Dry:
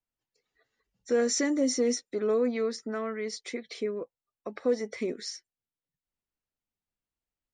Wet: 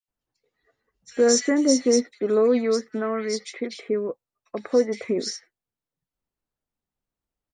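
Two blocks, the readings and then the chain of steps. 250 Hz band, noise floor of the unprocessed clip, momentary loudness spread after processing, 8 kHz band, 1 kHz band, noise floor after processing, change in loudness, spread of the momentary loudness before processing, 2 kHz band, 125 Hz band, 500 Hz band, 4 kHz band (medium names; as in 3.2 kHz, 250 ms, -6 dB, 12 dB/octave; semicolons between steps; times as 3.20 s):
+7.0 dB, under -85 dBFS, 15 LU, +7.0 dB, +6.5 dB, under -85 dBFS, +7.0 dB, 13 LU, +4.0 dB, no reading, +7.0 dB, +6.5 dB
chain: bands offset in time highs, lows 80 ms, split 2.3 kHz; tape noise reduction on one side only decoder only; trim +7 dB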